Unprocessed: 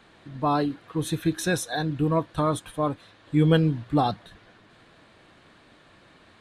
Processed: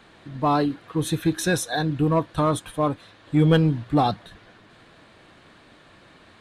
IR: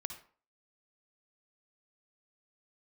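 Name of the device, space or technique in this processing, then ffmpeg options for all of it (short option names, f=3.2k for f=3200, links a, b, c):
parallel distortion: -filter_complex "[0:a]asplit=2[a][b];[b]asoftclip=type=hard:threshold=-20.5dB,volume=-7dB[c];[a][c]amix=inputs=2:normalize=0"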